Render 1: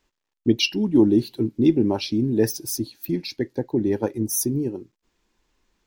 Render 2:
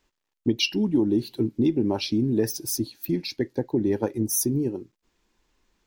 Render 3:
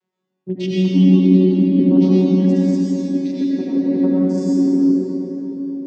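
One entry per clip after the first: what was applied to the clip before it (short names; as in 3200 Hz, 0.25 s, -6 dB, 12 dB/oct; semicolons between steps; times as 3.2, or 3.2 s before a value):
compressor, threshold -18 dBFS, peak gain reduction 7.5 dB
arpeggiated vocoder bare fifth, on F#3, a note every 0.179 s; reverb RT60 4.1 s, pre-delay 55 ms, DRR -8.5 dB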